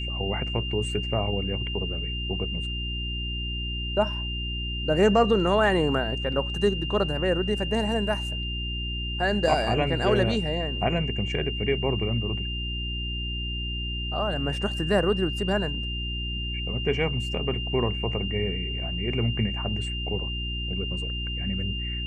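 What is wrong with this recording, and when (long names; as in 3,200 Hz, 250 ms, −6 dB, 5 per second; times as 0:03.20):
mains hum 60 Hz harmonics 6 −32 dBFS
whistle 2,800 Hz −32 dBFS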